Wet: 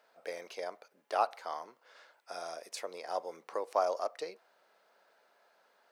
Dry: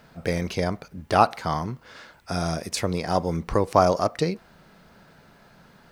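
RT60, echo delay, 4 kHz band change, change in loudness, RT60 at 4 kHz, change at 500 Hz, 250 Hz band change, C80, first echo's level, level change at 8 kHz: no reverb audible, no echo audible, −14.0 dB, −13.0 dB, no reverb audible, −11.5 dB, −27.5 dB, no reverb audible, no echo audible, −14.0 dB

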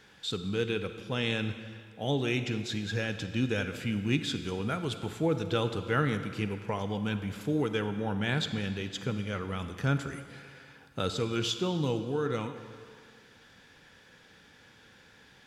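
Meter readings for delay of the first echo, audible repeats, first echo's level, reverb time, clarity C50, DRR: no echo audible, no echo audible, no echo audible, 2.0 s, 9.5 dB, 9.0 dB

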